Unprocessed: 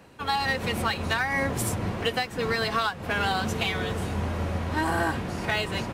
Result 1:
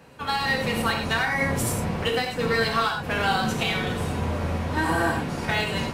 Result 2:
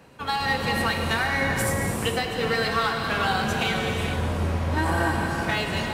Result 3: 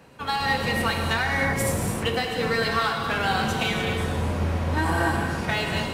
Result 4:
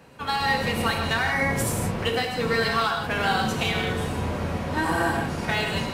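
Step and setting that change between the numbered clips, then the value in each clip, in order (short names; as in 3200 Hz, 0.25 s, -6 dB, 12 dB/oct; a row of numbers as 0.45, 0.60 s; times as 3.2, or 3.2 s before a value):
non-linear reverb, gate: 0.13, 0.5, 0.33, 0.2 s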